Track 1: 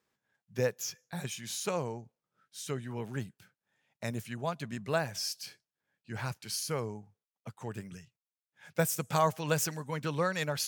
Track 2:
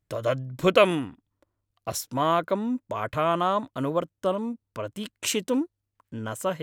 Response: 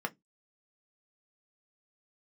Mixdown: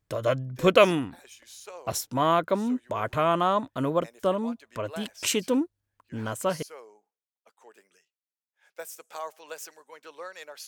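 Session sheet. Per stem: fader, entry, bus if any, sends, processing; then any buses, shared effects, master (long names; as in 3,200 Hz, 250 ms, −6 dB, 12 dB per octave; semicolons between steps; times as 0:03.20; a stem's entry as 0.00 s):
−9.0 dB, 0.00 s, no send, high-pass filter 390 Hz 24 dB per octave
+0.5 dB, 0.00 s, no send, no processing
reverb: not used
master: no processing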